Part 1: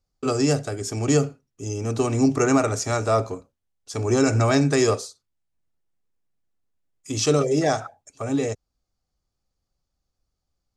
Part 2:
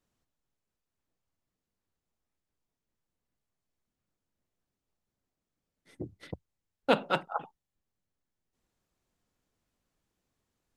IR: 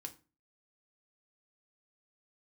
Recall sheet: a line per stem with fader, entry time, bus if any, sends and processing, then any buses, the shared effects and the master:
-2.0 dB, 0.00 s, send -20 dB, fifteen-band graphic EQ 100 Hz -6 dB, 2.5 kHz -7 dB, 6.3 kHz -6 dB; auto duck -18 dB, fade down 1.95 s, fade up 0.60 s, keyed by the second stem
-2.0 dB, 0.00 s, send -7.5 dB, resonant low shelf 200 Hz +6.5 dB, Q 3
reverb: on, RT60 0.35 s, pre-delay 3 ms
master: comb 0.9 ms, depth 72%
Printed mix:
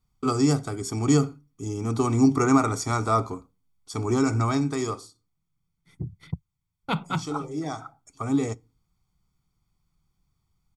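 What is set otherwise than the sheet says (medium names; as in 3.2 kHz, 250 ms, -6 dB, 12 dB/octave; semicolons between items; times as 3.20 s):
stem 2: send off; reverb return +10.0 dB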